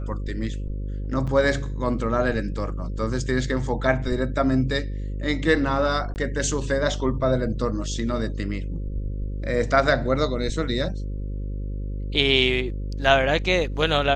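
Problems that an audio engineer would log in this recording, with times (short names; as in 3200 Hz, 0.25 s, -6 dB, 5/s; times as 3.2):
buzz 50 Hz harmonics 11 -29 dBFS
1.27–1.28 gap 5.7 ms
6.14–6.16 gap 19 ms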